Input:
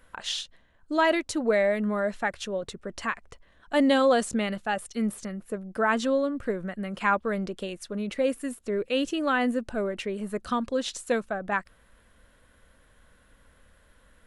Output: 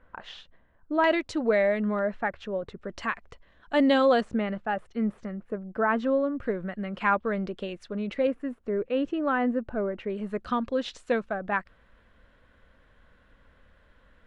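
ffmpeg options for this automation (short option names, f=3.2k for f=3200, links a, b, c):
-af "asetnsamples=n=441:p=0,asendcmd='1.04 lowpass f 4100;1.99 lowpass f 2000;2.76 lowpass f 4500;4.21 lowpass f 1800;6.4 lowpass f 3400;8.27 lowpass f 1600;10.1 lowpass f 3400',lowpass=1.6k"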